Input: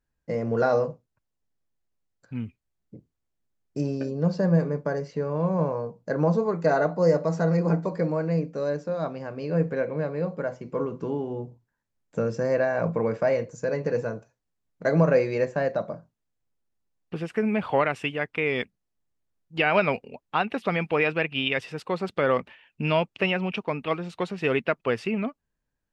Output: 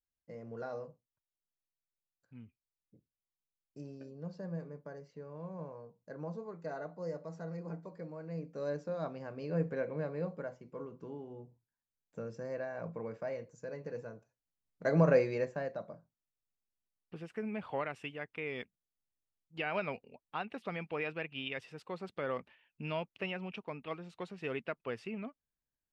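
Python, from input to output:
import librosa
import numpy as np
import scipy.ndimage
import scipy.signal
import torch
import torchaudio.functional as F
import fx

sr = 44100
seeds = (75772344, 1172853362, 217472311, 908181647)

y = fx.gain(x, sr, db=fx.line((8.17, -19.5), (8.69, -9.0), (10.26, -9.0), (10.71, -16.0), (14.16, -16.0), (15.11, -5.0), (15.74, -14.0)))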